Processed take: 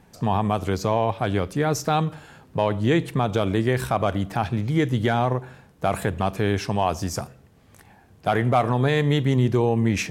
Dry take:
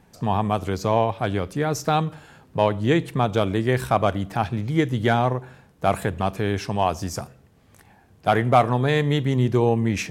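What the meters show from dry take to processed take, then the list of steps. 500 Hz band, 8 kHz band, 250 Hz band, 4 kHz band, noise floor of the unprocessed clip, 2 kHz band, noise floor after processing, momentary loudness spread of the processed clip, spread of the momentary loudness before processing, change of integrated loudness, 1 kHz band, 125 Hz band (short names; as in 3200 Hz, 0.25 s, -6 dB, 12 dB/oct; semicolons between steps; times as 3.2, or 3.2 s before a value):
-1.0 dB, +1.5 dB, +0.5 dB, -0.5 dB, -56 dBFS, -0.5 dB, -54 dBFS, 6 LU, 6 LU, -0.5 dB, -2.0 dB, +0.5 dB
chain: limiter -11.5 dBFS, peak gain reduction 5.5 dB; gain +1.5 dB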